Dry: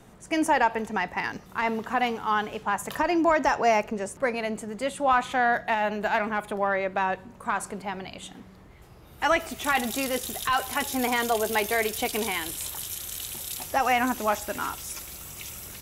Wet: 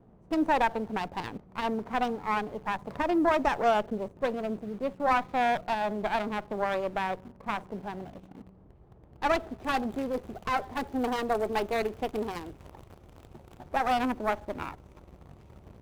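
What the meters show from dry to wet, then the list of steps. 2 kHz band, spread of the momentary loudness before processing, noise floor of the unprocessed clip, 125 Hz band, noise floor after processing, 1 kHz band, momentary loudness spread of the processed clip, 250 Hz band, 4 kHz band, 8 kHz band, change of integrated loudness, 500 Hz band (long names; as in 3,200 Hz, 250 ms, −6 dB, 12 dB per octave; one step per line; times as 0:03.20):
−7.5 dB, 11 LU, −50 dBFS, −1.0 dB, −56 dBFS, −3.5 dB, 12 LU, −1.5 dB, −7.5 dB, −19.0 dB, −3.5 dB, −2.5 dB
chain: adaptive Wiener filter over 25 samples
in parallel at −7 dB: bit reduction 7 bits
on the sum: high-shelf EQ 3,000 Hz −9.5 dB
windowed peak hold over 9 samples
level −4 dB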